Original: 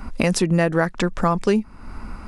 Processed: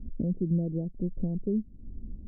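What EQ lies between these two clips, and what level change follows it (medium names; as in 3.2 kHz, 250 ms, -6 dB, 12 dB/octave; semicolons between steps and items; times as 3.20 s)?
Gaussian low-pass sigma 24 samples; -5.5 dB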